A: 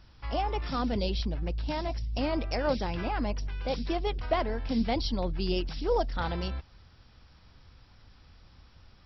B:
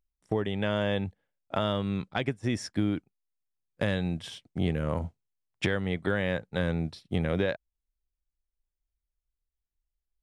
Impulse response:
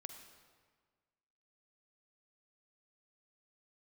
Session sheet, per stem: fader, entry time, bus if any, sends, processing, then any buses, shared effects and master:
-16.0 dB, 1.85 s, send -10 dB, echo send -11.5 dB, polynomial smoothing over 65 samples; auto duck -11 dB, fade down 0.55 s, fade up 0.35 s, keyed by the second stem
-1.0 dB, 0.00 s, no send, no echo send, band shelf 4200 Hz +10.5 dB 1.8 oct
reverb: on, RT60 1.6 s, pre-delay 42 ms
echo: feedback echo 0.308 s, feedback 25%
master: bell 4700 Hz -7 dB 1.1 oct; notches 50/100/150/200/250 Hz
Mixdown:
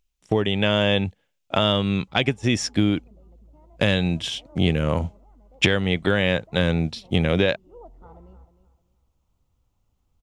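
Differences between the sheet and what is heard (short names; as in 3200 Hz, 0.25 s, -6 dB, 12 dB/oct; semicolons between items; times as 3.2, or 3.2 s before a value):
stem B -1.0 dB -> +7.5 dB; master: missing notches 50/100/150/200/250 Hz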